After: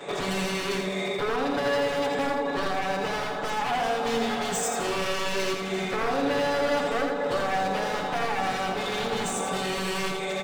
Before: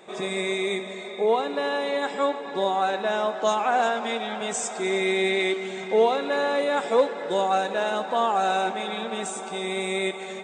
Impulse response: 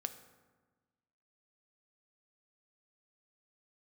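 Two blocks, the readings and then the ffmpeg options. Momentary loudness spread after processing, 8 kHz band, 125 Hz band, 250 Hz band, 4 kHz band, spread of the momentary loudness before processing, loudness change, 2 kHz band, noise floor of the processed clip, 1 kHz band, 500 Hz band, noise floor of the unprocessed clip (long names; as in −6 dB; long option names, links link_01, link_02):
3 LU, +1.0 dB, can't be measured, +1.0 dB, 0.0 dB, 7 LU, −2.0 dB, −0.5 dB, −31 dBFS, −2.5 dB, −3.5 dB, −36 dBFS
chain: -filter_complex "[0:a]highshelf=frequency=7700:gain=-5,acrossover=split=210[link_01][link_02];[link_02]acompressor=threshold=-41dB:ratio=3[link_03];[link_01][link_03]amix=inputs=2:normalize=0,aeval=exprs='0.0178*(abs(mod(val(0)/0.0178+3,4)-2)-1)':channel_layout=same,aecho=1:1:83|166|249|332:0.562|0.197|0.0689|0.0241,asplit=2[link_04][link_05];[1:a]atrim=start_sample=2205,adelay=7[link_06];[link_05][link_06]afir=irnorm=-1:irlink=0,volume=6dB[link_07];[link_04][link_07]amix=inputs=2:normalize=0,volume=6dB"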